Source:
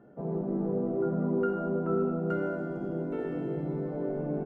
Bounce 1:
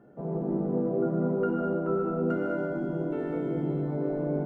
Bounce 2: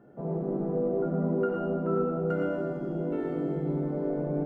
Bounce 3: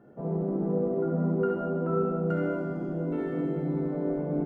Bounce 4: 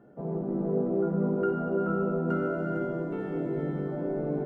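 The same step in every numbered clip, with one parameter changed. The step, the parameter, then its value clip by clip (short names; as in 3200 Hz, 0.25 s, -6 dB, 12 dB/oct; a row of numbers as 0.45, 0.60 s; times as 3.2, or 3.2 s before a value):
non-linear reverb, gate: 230, 140, 90, 490 ms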